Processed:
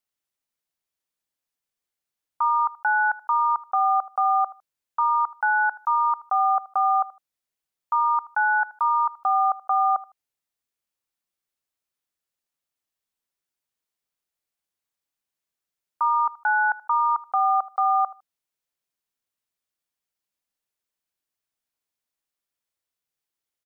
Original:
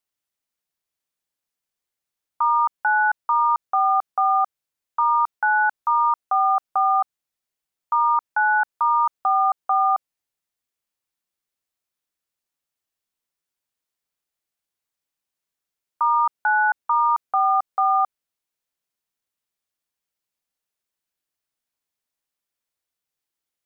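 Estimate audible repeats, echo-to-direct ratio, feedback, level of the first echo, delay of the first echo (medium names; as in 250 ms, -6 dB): 2, -19.0 dB, 22%, -19.0 dB, 78 ms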